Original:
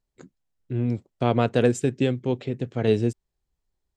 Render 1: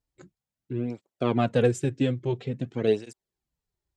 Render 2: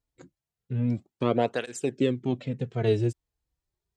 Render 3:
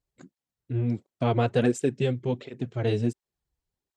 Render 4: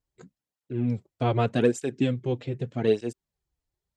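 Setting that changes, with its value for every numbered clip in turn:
through-zero flanger with one copy inverted, nulls at: 0.49, 0.3, 1.4, 0.83 Hertz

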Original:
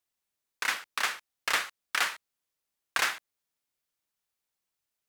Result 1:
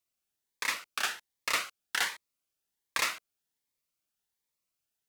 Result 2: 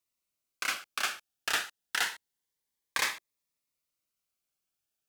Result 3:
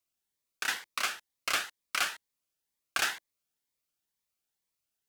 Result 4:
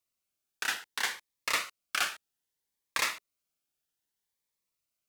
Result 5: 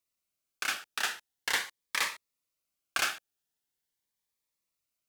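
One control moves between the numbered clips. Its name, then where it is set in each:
phaser whose notches keep moving one way, speed: 1.3, 0.27, 2.1, 0.63, 0.42 Hertz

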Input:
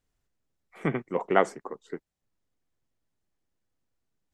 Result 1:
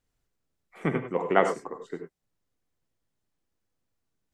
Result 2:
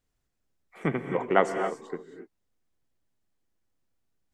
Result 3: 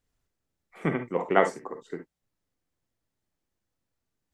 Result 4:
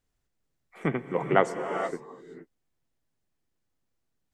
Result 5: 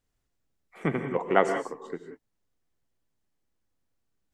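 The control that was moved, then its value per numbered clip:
reverb whose tail is shaped and stops, gate: 120, 300, 80, 490, 210 milliseconds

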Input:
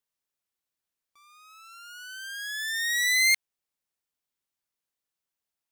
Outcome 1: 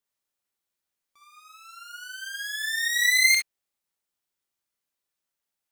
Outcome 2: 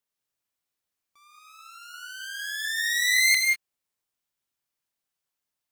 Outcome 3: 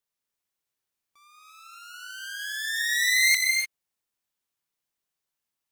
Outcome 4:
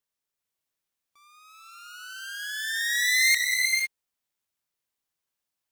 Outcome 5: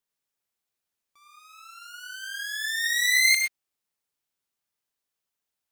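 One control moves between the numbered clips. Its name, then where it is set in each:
reverb whose tail is shaped and stops, gate: 80, 220, 320, 530, 140 milliseconds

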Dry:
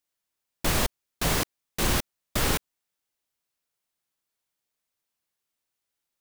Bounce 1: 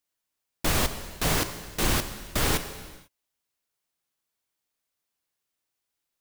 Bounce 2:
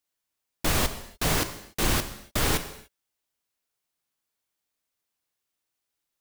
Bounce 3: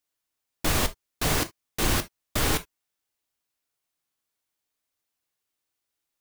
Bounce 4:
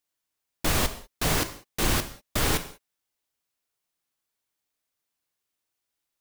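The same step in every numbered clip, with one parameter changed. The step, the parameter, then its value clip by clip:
reverb whose tail is shaped and stops, gate: 520, 320, 90, 220 milliseconds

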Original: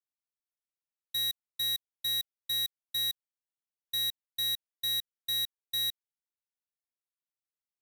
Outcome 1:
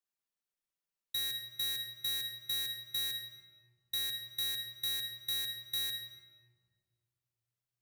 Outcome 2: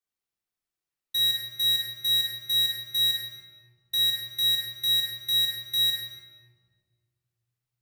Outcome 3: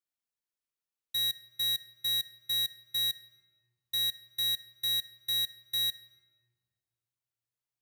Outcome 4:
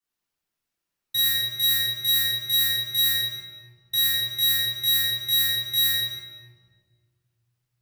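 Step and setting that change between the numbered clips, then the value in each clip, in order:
rectangular room, microphone at: 1.2, 3.6, 0.38, 10 metres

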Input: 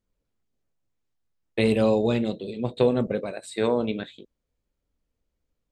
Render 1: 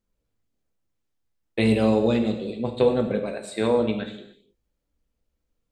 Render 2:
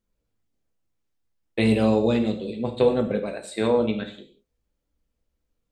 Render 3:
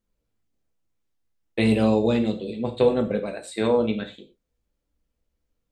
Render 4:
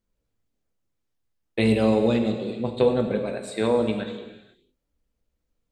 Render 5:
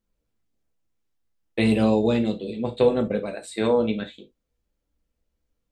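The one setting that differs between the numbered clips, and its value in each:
reverb whose tail is shaped and stops, gate: 320, 210, 140, 530, 90 milliseconds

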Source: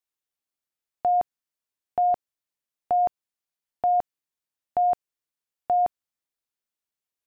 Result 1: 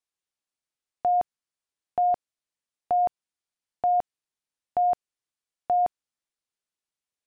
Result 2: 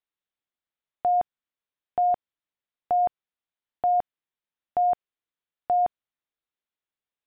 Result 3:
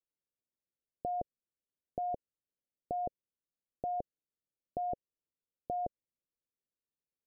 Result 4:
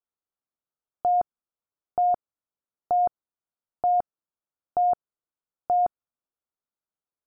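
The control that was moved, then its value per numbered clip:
Chebyshev low-pass filter, frequency: 10,000, 3,700, 550, 1,400 Hertz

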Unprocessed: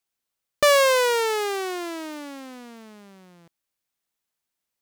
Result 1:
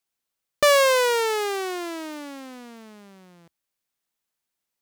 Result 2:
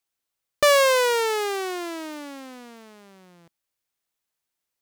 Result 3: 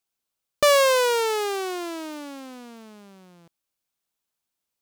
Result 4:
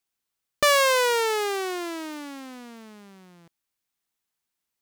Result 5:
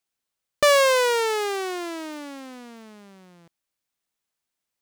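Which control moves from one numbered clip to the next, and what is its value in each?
parametric band, centre frequency: 77, 210, 1,900, 570, 14,000 Hertz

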